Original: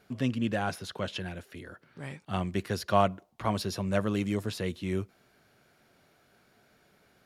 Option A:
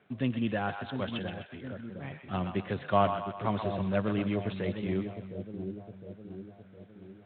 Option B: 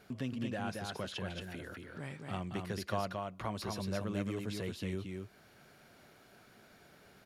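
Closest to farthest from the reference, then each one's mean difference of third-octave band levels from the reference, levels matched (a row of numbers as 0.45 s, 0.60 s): B, A; 5.5 dB, 7.5 dB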